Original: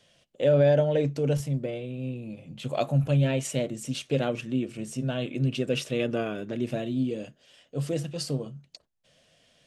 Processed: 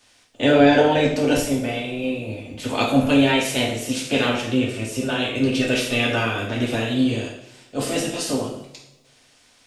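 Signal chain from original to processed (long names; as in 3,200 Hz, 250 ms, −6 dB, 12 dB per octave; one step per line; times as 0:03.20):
ceiling on every frequency bin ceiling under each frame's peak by 17 dB
coupled-rooms reverb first 0.62 s, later 1.6 s, from −18 dB, DRR −3 dB
level +2.5 dB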